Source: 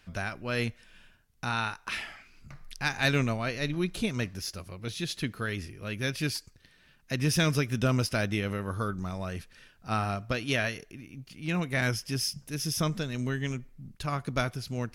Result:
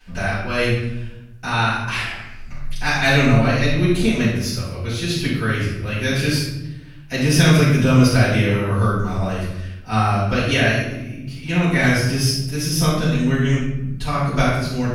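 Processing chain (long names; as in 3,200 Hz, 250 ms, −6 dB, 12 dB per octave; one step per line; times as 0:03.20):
rectangular room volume 300 cubic metres, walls mixed, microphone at 7.1 metres
level −4.5 dB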